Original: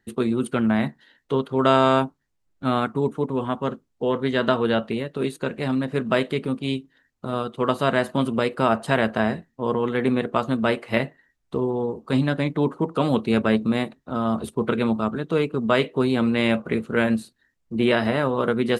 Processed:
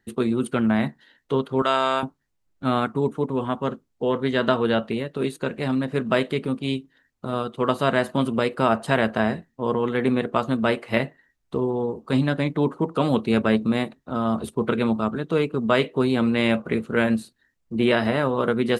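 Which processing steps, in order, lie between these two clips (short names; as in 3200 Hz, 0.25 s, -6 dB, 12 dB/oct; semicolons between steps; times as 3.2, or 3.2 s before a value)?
1.62–2.03 HPF 950 Hz 6 dB/oct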